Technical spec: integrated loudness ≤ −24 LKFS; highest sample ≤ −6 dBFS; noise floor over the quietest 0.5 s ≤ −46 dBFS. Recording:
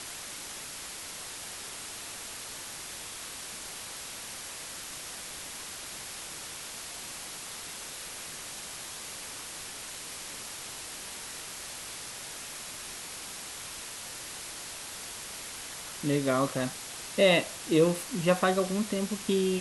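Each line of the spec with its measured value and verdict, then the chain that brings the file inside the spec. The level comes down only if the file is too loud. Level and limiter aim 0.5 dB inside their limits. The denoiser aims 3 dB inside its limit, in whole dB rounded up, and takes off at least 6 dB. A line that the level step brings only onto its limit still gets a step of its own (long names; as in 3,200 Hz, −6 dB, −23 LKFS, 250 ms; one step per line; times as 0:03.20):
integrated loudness −33.5 LKFS: in spec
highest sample −10.0 dBFS: in spec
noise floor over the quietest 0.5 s −42 dBFS: out of spec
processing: broadband denoise 7 dB, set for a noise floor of −42 dBFS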